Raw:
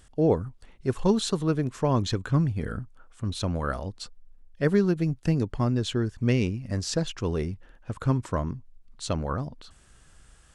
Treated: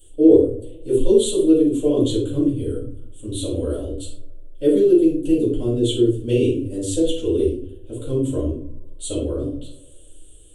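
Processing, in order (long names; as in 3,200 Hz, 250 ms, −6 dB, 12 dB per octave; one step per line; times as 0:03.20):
drawn EQ curve 120 Hz 0 dB, 180 Hz −22 dB, 280 Hz +10 dB, 520 Hz +8 dB, 840 Hz −17 dB, 2,100 Hz −15 dB, 3,200 Hz +11 dB, 5,200 Hz −12 dB, 8,200 Hz +14 dB
on a send: delay with a band-pass on its return 77 ms, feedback 79%, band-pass 770 Hz, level −24 dB
on the sum: rectangular room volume 440 cubic metres, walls furnished, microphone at 7.4 metres
level −10 dB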